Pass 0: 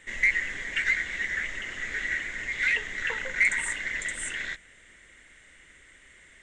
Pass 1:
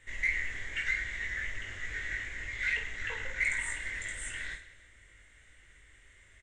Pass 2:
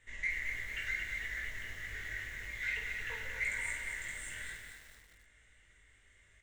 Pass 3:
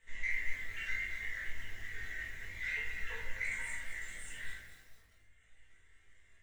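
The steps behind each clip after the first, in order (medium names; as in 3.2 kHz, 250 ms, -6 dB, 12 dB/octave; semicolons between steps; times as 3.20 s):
resonant low shelf 130 Hz +9 dB, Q 1.5; reverse bouncing-ball echo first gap 20 ms, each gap 1.6×, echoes 5; trim -8.5 dB
on a send at -5 dB: reverberation, pre-delay 3 ms; on the sum: bit-crushed delay 226 ms, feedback 55%, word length 8-bit, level -5.5 dB; trim -6.5 dB
reverb removal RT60 1.3 s; hum notches 60/120/180/240/300/360/420/480/540/600 Hz; simulated room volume 180 m³, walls mixed, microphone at 1.6 m; trim -5 dB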